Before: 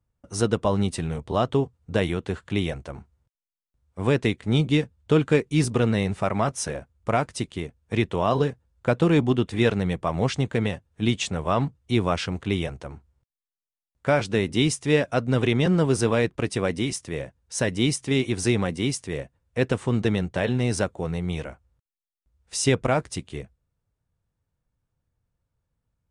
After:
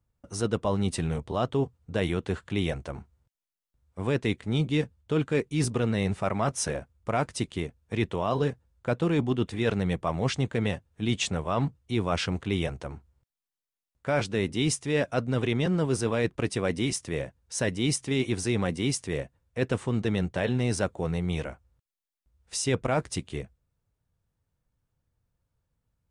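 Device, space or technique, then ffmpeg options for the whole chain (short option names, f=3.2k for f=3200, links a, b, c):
compression on the reversed sound: -af "areverse,acompressor=threshold=-22dB:ratio=6,areverse"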